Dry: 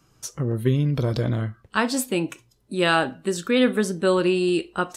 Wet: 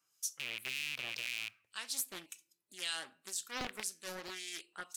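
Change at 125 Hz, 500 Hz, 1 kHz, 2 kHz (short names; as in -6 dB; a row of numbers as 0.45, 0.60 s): -37.5, -29.5, -21.5, -13.5 dB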